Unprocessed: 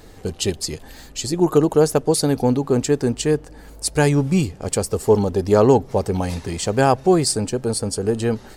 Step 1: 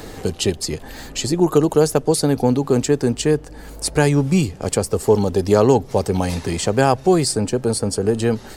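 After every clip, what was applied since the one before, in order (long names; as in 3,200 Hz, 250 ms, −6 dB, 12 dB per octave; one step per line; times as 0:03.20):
multiband upward and downward compressor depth 40%
level +1 dB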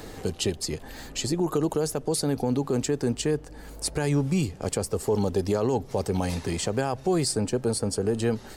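brickwall limiter −9.5 dBFS, peak gain reduction 8 dB
level −6 dB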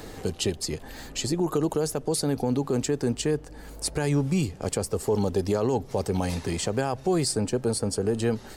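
no processing that can be heard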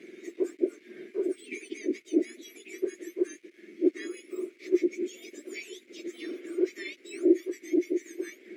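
frequency axis turned over on the octave scale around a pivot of 1,700 Hz
bit-depth reduction 8 bits, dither none
pair of resonant band-passes 880 Hz, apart 2.6 octaves
level +6 dB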